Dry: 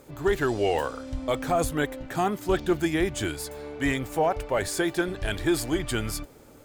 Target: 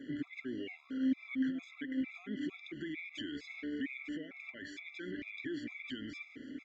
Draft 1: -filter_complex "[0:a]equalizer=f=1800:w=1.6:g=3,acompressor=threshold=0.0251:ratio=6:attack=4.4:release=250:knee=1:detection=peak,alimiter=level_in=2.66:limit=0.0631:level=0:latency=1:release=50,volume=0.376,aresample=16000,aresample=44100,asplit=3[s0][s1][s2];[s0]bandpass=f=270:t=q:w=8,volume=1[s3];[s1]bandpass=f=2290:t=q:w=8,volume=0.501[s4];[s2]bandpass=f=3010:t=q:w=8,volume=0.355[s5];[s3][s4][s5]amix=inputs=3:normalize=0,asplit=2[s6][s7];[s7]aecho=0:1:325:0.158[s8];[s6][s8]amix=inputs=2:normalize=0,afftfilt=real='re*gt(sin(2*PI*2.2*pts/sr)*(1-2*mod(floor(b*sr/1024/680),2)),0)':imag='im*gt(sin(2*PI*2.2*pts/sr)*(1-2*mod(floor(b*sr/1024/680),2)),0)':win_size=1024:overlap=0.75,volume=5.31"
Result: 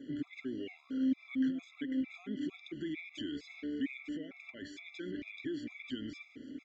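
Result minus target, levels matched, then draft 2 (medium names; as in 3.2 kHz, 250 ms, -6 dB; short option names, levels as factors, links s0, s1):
2 kHz band -4.5 dB
-filter_complex "[0:a]equalizer=f=1800:w=1.6:g=12,acompressor=threshold=0.0251:ratio=6:attack=4.4:release=250:knee=1:detection=peak,alimiter=level_in=2.66:limit=0.0631:level=0:latency=1:release=50,volume=0.376,aresample=16000,aresample=44100,asplit=3[s0][s1][s2];[s0]bandpass=f=270:t=q:w=8,volume=1[s3];[s1]bandpass=f=2290:t=q:w=8,volume=0.501[s4];[s2]bandpass=f=3010:t=q:w=8,volume=0.355[s5];[s3][s4][s5]amix=inputs=3:normalize=0,asplit=2[s6][s7];[s7]aecho=0:1:325:0.158[s8];[s6][s8]amix=inputs=2:normalize=0,afftfilt=real='re*gt(sin(2*PI*2.2*pts/sr)*(1-2*mod(floor(b*sr/1024/680),2)),0)':imag='im*gt(sin(2*PI*2.2*pts/sr)*(1-2*mod(floor(b*sr/1024/680),2)),0)':win_size=1024:overlap=0.75,volume=5.31"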